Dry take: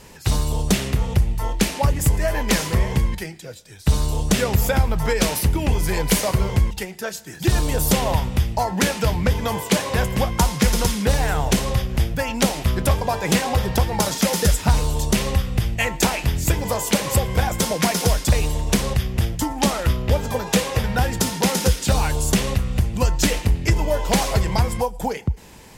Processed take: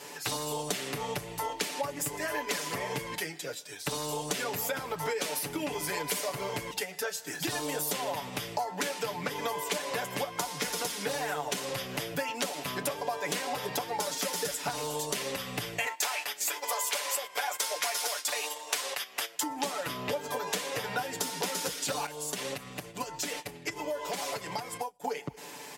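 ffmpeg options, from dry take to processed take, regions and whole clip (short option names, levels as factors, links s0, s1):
-filter_complex "[0:a]asettb=1/sr,asplit=3[s0][s1][s2];[s0]atrim=end=15.864[s3];[s1]atrim=start=15.86:end=19.43,asetpts=PTS-STARTPTS,afade=t=in:d=0.004:c=qsin,afade=t=out:st=3.566:d=0.004:c=qsin,highpass=760,agate=range=0.282:threshold=0.0178:ratio=16:release=100:detection=peak,acontrast=66[s4];[s2]atrim=start=19.426[s5];[s3][s4]acrossfade=d=0.004:c1=hsin:c2=qsin[s6];[s6][s5]acrossfade=d=0.004:c1=qsin:c2=hsin,asettb=1/sr,asplit=3[s7][s8][s9];[s7]atrim=end=22.064[s10];[s8]atrim=start=22.06:end=25.08,asetpts=PTS-STARTPTS,afade=t=in:d=0.004:c=qsin,afade=t=out:st=3.016:d=0.004:c=qsin,agate=range=0.0224:threshold=0.112:ratio=3:release=100:detection=peak,acompressor=threshold=0.0562:ratio=12:attack=3.2:release=140:knee=1:detection=peak[s11];[s9]atrim=start=25.076[s12];[s10][s11]acrossfade=d=0.004:c1=hsin:c2=qsin[s13];[s13][s12]acrossfade=d=0.004:c1=qsin:c2=hsin,highpass=340,aecho=1:1:6.9:0.89,acompressor=threshold=0.0282:ratio=5"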